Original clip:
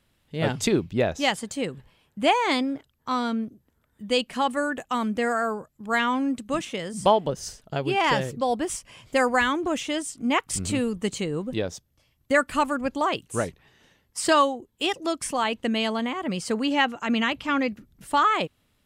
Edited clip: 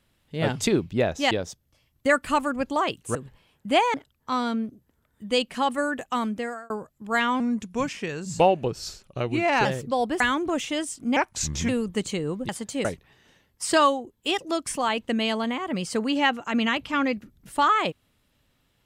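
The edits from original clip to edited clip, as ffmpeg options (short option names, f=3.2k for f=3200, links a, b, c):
-filter_complex "[0:a]asplit=12[a][b][c][d][e][f][g][h][i][j][k][l];[a]atrim=end=1.312[m];[b]atrim=start=11.558:end=13.402[n];[c]atrim=start=1.668:end=2.462[o];[d]atrim=start=2.728:end=5.49,asetpts=PTS-STARTPTS,afade=t=out:st=2.262:d=0.5[p];[e]atrim=start=5.49:end=6.194,asetpts=PTS-STARTPTS,afade=t=in:d=0.004:c=hsin[q];[f]atrim=start=6.19:end=8.15,asetpts=PTS-STARTPTS,asetrate=38367,aresample=44100[r];[g]atrim=start=8.146:end=8.702[s];[h]atrim=start=9.378:end=10.344[t];[i]atrim=start=10.34:end=10.76,asetpts=PTS-STARTPTS,asetrate=35280,aresample=44100,atrim=end_sample=23152,asetpts=PTS-STARTPTS[u];[j]atrim=start=10.756:end=11.562[v];[k]atrim=start=1.308:end=1.672[w];[l]atrim=start=13.398[x];[m][n]acrossfade=d=0.004:c1=hsin:c2=hsin[y];[y][o]acrossfade=d=0.004:c1=hsin:c2=hsin[z];[p][q]concat=n=2:v=0:a=1[aa];[z][aa]acrossfade=d=0.004:c1=hsin:c2=hsin[ab];[ab][r]acrossfade=d=0.004:c1=hsin:c2=hsin[ac];[ac][s]acrossfade=d=0.004:c1=hsin:c2=hsin[ad];[ad][t]acrossfade=d=0.004:c1=hsin:c2=hsin[ae];[ae][u]acrossfade=d=0.004:c1=hsin:c2=hsin[af];[af][v]acrossfade=d=0.004:c1=hsin:c2=hsin[ag];[ag][w]acrossfade=d=0.004:c1=hsin:c2=hsin[ah];[ah][x]acrossfade=d=0.004:c1=hsin:c2=hsin"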